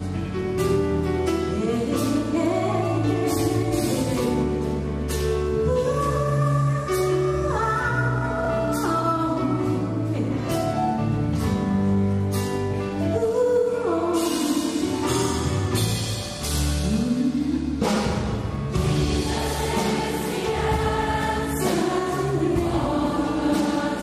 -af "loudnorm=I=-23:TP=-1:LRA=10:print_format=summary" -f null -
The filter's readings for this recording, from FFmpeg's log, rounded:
Input Integrated:    -23.4 LUFS
Input True Peak:     -10.2 dBTP
Input LRA:             1.3 LU
Input Threshold:     -33.4 LUFS